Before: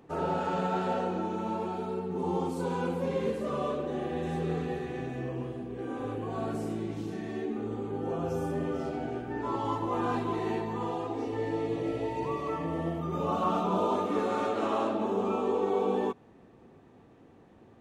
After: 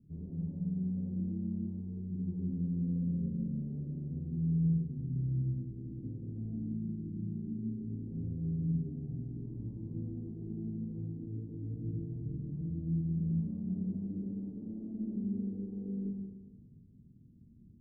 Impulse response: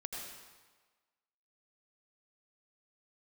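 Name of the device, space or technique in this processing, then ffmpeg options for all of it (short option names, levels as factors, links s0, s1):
club heard from the street: -filter_complex "[0:a]alimiter=limit=0.0841:level=0:latency=1,lowpass=f=190:w=0.5412,lowpass=f=190:w=1.3066[s0];[1:a]atrim=start_sample=2205[s1];[s0][s1]afir=irnorm=-1:irlink=0,volume=1.88"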